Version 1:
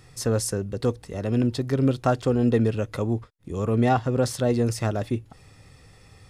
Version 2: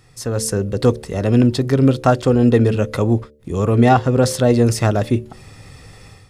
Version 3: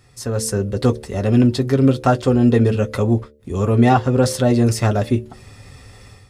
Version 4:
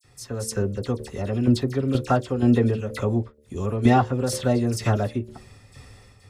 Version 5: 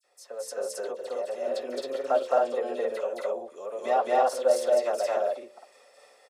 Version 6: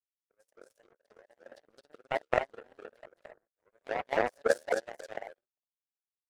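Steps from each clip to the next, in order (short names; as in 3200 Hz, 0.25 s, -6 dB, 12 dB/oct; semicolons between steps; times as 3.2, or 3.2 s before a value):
de-hum 74 Hz, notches 8; AGC gain up to 11 dB
notch comb 160 Hz
tremolo saw down 2.1 Hz, depth 70%; dispersion lows, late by 45 ms, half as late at 3000 Hz; gain -2.5 dB
ladder high-pass 530 Hz, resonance 70%; loudspeakers at several distances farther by 74 m 0 dB, 92 m -1 dB; gain +1 dB
power-law curve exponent 3; shaped vibrato saw up 3.6 Hz, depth 250 cents; gain +4 dB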